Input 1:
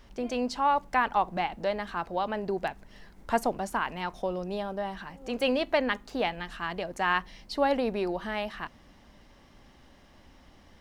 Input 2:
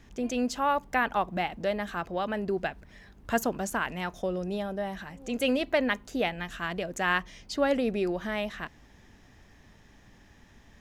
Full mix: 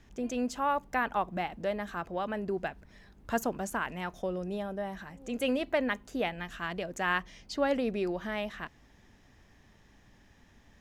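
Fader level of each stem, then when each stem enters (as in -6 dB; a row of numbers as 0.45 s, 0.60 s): -16.5 dB, -4.5 dB; 0.00 s, 0.00 s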